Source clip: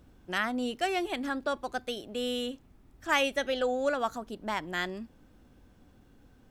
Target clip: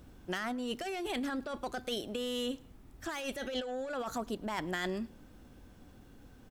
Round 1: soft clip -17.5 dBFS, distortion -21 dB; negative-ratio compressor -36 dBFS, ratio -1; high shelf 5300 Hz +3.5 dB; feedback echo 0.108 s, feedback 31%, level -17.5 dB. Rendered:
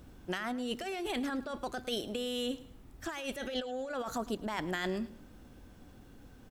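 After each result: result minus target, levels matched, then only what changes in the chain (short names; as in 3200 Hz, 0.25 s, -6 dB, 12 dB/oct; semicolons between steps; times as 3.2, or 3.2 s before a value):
soft clip: distortion -8 dB; echo-to-direct +7 dB
change: soft clip -24.5 dBFS, distortion -13 dB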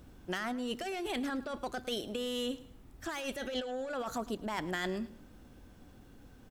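echo-to-direct +7 dB
change: feedback echo 0.108 s, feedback 31%, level -24.5 dB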